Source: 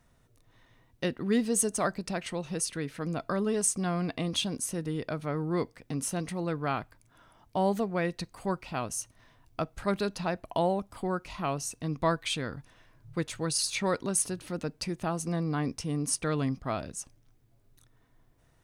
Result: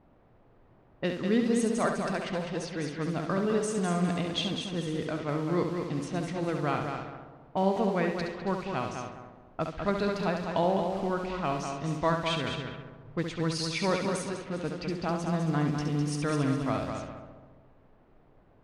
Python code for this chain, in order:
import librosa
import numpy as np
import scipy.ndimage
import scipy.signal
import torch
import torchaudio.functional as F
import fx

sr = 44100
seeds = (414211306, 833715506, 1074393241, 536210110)

p1 = x + fx.echo_heads(x, sr, ms=68, heads='first and third', feedback_pct=55, wet_db=-6.5, dry=0)
p2 = fx.quant_dither(p1, sr, seeds[0], bits=8, dither='triangular')
p3 = scipy.signal.sosfilt(scipy.signal.butter(2, 4400.0, 'lowpass', fs=sr, output='sos'), p2)
y = fx.env_lowpass(p3, sr, base_hz=520.0, full_db=-27.0)